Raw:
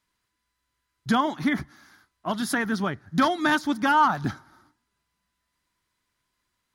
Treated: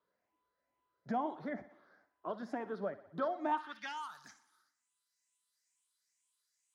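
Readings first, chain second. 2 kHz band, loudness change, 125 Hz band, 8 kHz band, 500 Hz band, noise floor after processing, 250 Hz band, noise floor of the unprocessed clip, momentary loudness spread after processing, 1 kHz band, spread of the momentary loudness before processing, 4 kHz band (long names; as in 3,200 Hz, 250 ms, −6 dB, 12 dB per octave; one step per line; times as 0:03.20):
−20.5 dB, −15.5 dB, −21.0 dB, −24.0 dB, −8.0 dB, below −85 dBFS, −17.5 dB, −79 dBFS, 10 LU, −14.5 dB, 13 LU, −21.0 dB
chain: rippled gain that drifts along the octave scale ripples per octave 0.63, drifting +2.2 Hz, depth 10 dB
on a send: feedback echo with a high-pass in the loop 61 ms, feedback 55%, high-pass 190 Hz, level −15.5 dB
on the sum: band-pass filter sweep 550 Hz → 7,900 Hz, 0:03.45–0:04.03
multiband upward and downward compressor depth 40%
level −5.5 dB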